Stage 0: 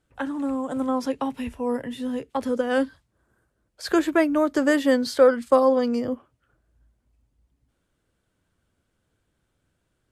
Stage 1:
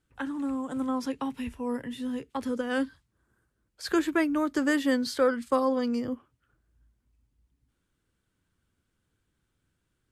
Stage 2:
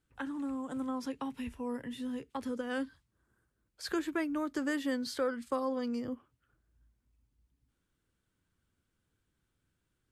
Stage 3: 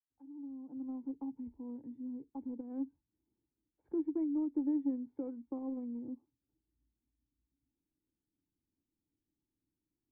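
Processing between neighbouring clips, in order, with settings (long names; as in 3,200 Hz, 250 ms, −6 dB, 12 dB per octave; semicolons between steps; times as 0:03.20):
parametric band 620 Hz −8 dB 0.83 octaves; level −3 dB
downward compressor 1.5 to 1, threshold −34 dBFS, peak gain reduction 5.5 dB; level −3.5 dB
fade in at the beginning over 1.09 s; in parallel at −11.5 dB: bit reduction 5 bits; on the sum: formant resonators in series u; level +1 dB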